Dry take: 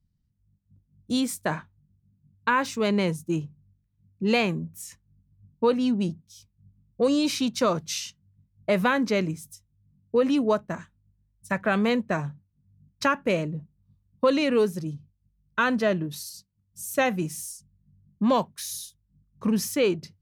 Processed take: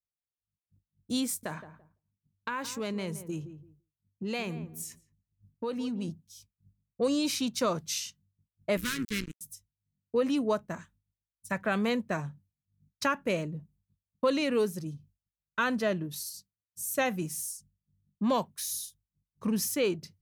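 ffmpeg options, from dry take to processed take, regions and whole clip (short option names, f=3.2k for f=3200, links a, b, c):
-filter_complex "[0:a]asettb=1/sr,asplit=3[a][b][c];[a]atrim=end=1.264[d];[b]atrim=start=1.26:end=6.08,asetpts=PTS-STARTPTS,afade=t=in:d=0.004:c=qsin,afade=t=out:st=4.816:d=0.004:c=qsin,acompressor=threshold=-27dB:ratio=2.5:attack=3.2:release=140:knee=1:detection=peak,asplit=2[e][f];[f]adelay=169,lowpass=f=1.1k:p=1,volume=-11dB,asplit=2[g][h];[h]adelay=169,lowpass=f=1.1k:p=1,volume=0.23,asplit=2[i][j];[j]adelay=169,lowpass=f=1.1k:p=1,volume=0.23[k];[e][g][i][k]amix=inputs=4:normalize=0,atrim=end_sample=212562[l];[c]atrim=start=6.076[m];[d][l]acrossfade=d=0.004:c1=hsin:c2=qsin[n];[n][m]acrossfade=d=0.004:c1=qsin:c2=hsin,asettb=1/sr,asplit=3[o][p][q];[o]atrim=end=8.774[r];[p]atrim=start=8.77:end=9.41,asetpts=PTS-STARTPTS,afade=t=in:d=0.004:c=qsin,afade=t=out:st=0.636:d=0.004:c=qsin,tremolo=f=120:d=0.333,acrusher=bits=3:mix=0:aa=0.5,asuperstop=centerf=710:order=4:qfactor=0.54[s];[q]atrim=start=9.406[t];[r][s]acrossfade=d=0.004:c1=hsin:c2=qsin[u];[u][t]acrossfade=d=0.004:c1=qsin:c2=hsin,agate=range=-33dB:threshold=-52dB:ratio=3:detection=peak,highshelf=f=6.6k:g=8.5,volume=-5.5dB"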